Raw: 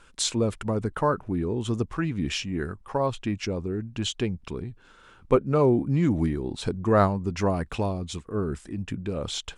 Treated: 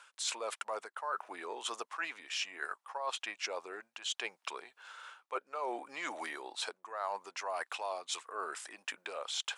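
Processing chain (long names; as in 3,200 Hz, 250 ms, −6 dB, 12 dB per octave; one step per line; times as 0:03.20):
high-pass filter 710 Hz 24 dB per octave
reversed playback
downward compressor 16 to 1, threshold −39 dBFS, peak gain reduction 21.5 dB
reversed playback
level +5 dB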